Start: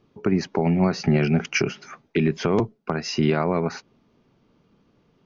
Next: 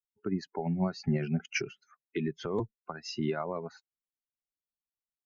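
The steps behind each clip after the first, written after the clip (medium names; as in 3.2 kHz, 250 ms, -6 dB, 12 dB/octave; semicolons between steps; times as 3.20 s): expander on every frequency bin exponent 2; trim -7 dB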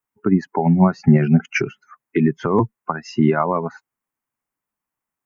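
ten-band graphic EQ 125 Hz +6 dB, 250 Hz +7 dB, 1 kHz +10 dB, 2 kHz +5 dB, 4 kHz -12 dB; trim +9 dB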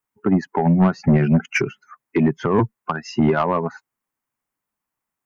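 saturation -10.5 dBFS, distortion -13 dB; trim +1.5 dB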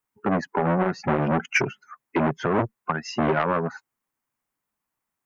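transformer saturation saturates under 810 Hz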